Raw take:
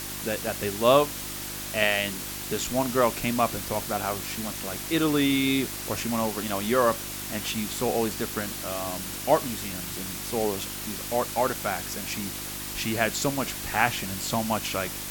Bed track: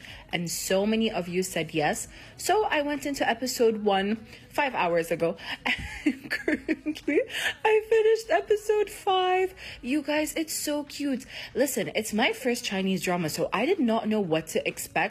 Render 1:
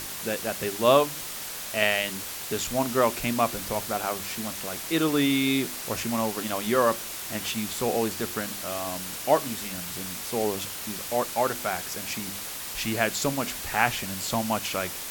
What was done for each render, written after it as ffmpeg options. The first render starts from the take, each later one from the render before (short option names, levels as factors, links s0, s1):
-af "bandreject=f=50:t=h:w=4,bandreject=f=100:t=h:w=4,bandreject=f=150:t=h:w=4,bandreject=f=200:t=h:w=4,bandreject=f=250:t=h:w=4,bandreject=f=300:t=h:w=4,bandreject=f=350:t=h:w=4"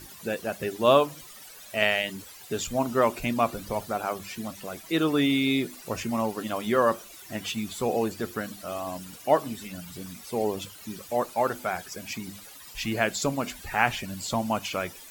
-af "afftdn=nr=15:nf=-36"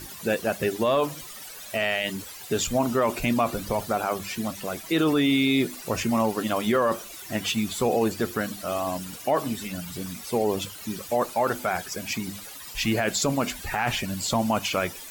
-af "acontrast=36,alimiter=limit=0.2:level=0:latency=1:release=16"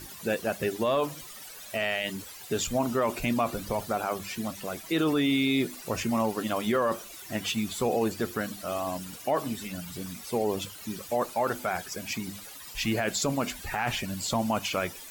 -af "volume=0.668"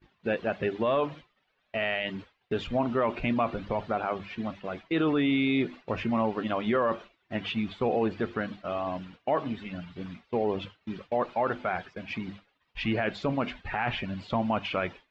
-af "lowpass=f=3200:w=0.5412,lowpass=f=3200:w=1.3066,agate=range=0.0224:threshold=0.0141:ratio=3:detection=peak"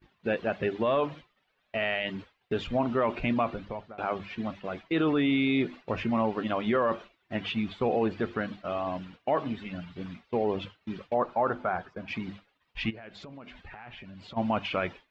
-filter_complex "[0:a]asettb=1/sr,asplit=3[s0][s1][s2];[s0]atrim=end=11.144[s3];[s1]atrim=start=11.14:end=12.08,asetpts=PTS-STARTPTS,afade=t=in:d=0.004:c=qsin,afade=t=out:st=0.936:d=0.004:c=qsin,highshelf=f=1700:t=q:w=1.5:g=-7[s4];[s2]atrim=start=12.076[s5];[s3][s4]acrossfade=d=0.004:c1=hsin:c2=qsin[s6];[s6][s5]acrossfade=d=0.004:c1=qsin:c2=hsin,asplit=3[s7][s8][s9];[s7]afade=t=out:st=12.89:d=0.02[s10];[s8]acompressor=threshold=0.00708:ratio=6:attack=3.2:release=140:knee=1:detection=peak,afade=t=in:st=12.89:d=0.02,afade=t=out:st=14.36:d=0.02[s11];[s9]afade=t=in:st=14.36:d=0.02[s12];[s10][s11][s12]amix=inputs=3:normalize=0,asplit=2[s13][s14];[s13]atrim=end=3.98,asetpts=PTS-STARTPTS,afade=t=out:st=3.39:d=0.59:silence=0.0707946[s15];[s14]atrim=start=3.98,asetpts=PTS-STARTPTS,afade=t=in:d=0.004:c=hsin:silence=0.0707946[s16];[s15][s16]concat=n=2:v=0:a=1"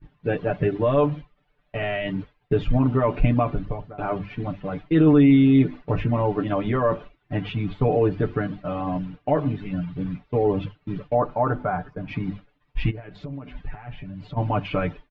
-af "aemphasis=mode=reproduction:type=riaa,aecho=1:1:6.8:0.91"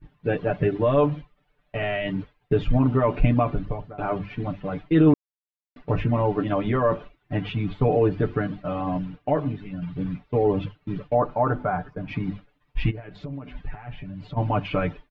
-filter_complex "[0:a]asplit=4[s0][s1][s2][s3];[s0]atrim=end=5.14,asetpts=PTS-STARTPTS,afade=t=out:st=5.136:d=0.004:c=hsin[s4];[s1]atrim=start=5.14:end=5.76,asetpts=PTS-STARTPTS,volume=0[s5];[s2]atrim=start=5.76:end=9.82,asetpts=PTS-STARTPTS,afade=t=in:d=0.004:c=hsin,afade=t=out:st=3.38:d=0.68:silence=0.446684[s6];[s3]atrim=start=9.82,asetpts=PTS-STARTPTS,afade=t=in:d=0.004:c=hsin:silence=0.446684[s7];[s4][s5][s6][s7]concat=n=4:v=0:a=1"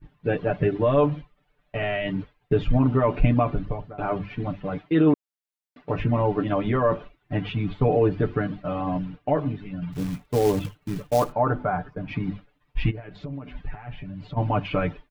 -filter_complex "[0:a]asettb=1/sr,asplit=3[s0][s1][s2];[s0]atrim=end=4.784[s3];[s1]atrim=start=4.78:end=6,asetpts=PTS-STARTPTS,afade=t=in:d=0.004:c=qsin,afade=t=out:st=1.216:d=0.004:c=qsin,highpass=f=200:p=1[s4];[s2]atrim=start=5.996[s5];[s3][s4]acrossfade=d=0.004:c1=hsin:c2=qsin[s6];[s6][s5]acrossfade=d=0.004:c1=qsin:c2=hsin,asplit=3[s7][s8][s9];[s7]afade=t=out:st=9.92:d=0.02[s10];[s8]acrusher=bits=4:mode=log:mix=0:aa=0.000001,afade=t=in:st=9.92:d=0.02,afade=t=out:st=11.31:d=0.02[s11];[s9]afade=t=in:st=11.31:d=0.02[s12];[s10][s11][s12]amix=inputs=3:normalize=0"